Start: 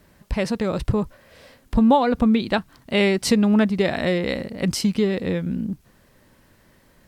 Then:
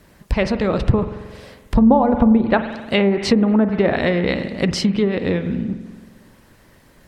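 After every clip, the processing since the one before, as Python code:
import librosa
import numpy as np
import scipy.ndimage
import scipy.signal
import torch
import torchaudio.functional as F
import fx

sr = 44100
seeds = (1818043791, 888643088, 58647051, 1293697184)

y = fx.rev_spring(x, sr, rt60_s=1.4, pass_ms=(45,), chirp_ms=70, drr_db=8.5)
y = fx.env_lowpass_down(y, sr, base_hz=860.0, full_db=-12.5)
y = fx.hpss(y, sr, part='percussive', gain_db=5)
y = y * 10.0 ** (2.0 / 20.0)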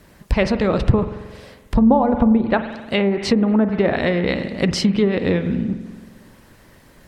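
y = fx.rider(x, sr, range_db=3, speed_s=2.0)
y = y * 10.0 ** (-1.0 / 20.0)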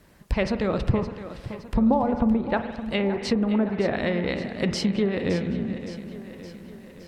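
y = fx.echo_feedback(x, sr, ms=566, feedback_pct=57, wet_db=-12.5)
y = y * 10.0 ** (-6.5 / 20.0)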